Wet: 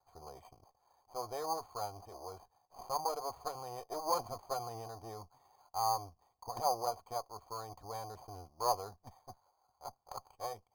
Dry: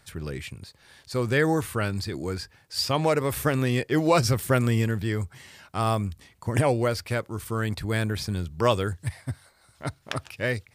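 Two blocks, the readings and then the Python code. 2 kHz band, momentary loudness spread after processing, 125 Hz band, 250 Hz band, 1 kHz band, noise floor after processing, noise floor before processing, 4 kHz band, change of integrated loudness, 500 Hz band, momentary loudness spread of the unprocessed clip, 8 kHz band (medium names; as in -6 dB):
-29.5 dB, 19 LU, -27.5 dB, -27.0 dB, -5.5 dB, -78 dBFS, -61 dBFS, -14.0 dB, -13.5 dB, -15.0 dB, 14 LU, -9.5 dB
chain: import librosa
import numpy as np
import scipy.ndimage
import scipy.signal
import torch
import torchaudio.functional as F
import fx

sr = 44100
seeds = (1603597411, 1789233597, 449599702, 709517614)

y = fx.lower_of_two(x, sr, delay_ms=2.2)
y = fx.formant_cascade(y, sr, vowel='a')
y = np.repeat(y[::8], 8)[:len(y)]
y = y * 10.0 ** (4.0 / 20.0)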